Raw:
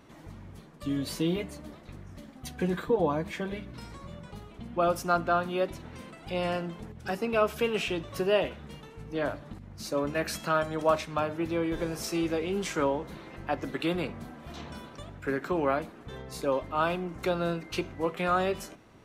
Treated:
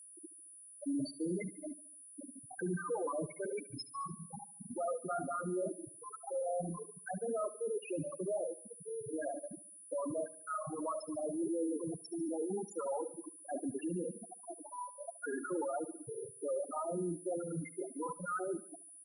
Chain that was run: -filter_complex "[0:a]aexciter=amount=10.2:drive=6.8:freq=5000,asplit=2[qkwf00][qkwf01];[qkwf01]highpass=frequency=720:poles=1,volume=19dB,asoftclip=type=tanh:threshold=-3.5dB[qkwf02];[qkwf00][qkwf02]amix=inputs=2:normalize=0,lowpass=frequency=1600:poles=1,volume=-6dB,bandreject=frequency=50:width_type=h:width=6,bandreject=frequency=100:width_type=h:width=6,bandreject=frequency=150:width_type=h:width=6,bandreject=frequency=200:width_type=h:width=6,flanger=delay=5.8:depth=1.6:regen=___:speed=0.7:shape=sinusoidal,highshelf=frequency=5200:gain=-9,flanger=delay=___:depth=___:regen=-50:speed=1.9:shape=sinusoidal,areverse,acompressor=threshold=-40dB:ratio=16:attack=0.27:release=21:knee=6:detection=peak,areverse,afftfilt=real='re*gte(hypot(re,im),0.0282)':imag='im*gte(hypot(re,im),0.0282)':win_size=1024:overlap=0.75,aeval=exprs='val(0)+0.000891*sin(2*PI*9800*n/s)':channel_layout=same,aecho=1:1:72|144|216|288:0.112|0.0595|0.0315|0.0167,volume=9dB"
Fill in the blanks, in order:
16, 8.2, 9.3